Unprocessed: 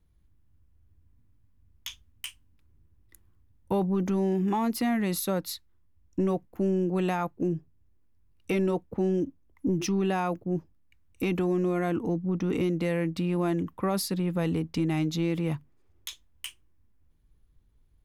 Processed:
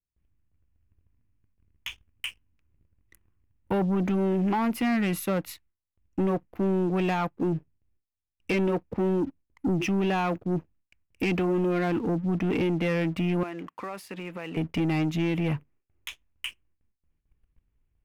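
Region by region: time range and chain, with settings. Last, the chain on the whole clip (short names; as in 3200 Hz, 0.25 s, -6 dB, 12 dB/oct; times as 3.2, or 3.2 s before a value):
13.43–14.57 weighting filter A + compressor 3:1, threshold -38 dBFS
whole clip: gate with hold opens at -56 dBFS; resonant high shelf 3300 Hz -7.5 dB, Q 3; sample leveller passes 2; gain -3.5 dB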